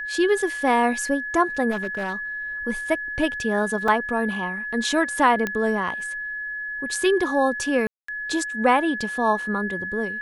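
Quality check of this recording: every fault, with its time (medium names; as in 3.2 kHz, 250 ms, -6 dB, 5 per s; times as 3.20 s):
whine 1.7 kHz -28 dBFS
1.70–2.14 s: clipped -22.5 dBFS
3.88 s: dropout 3 ms
5.47 s: pop -11 dBFS
7.87–8.08 s: dropout 214 ms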